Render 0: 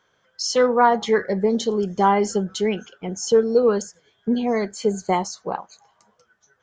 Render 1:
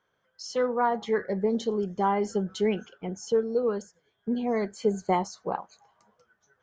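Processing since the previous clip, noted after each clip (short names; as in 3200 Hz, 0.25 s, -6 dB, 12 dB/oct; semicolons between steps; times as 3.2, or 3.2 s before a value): high shelf 3400 Hz -8.5 dB; vocal rider within 3 dB 0.5 s; gain -6 dB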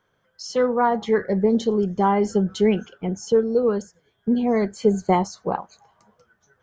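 low shelf 230 Hz +7.5 dB; gain +4.5 dB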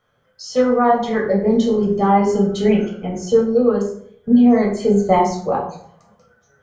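reverb RT60 0.60 s, pre-delay 8 ms, DRR -2 dB; gain -1 dB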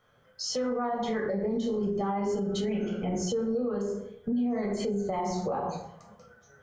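compressor 6:1, threshold -23 dBFS, peak gain reduction 14 dB; limiter -22.5 dBFS, peak gain reduction 9 dB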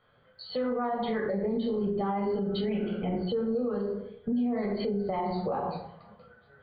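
brick-wall FIR low-pass 4800 Hz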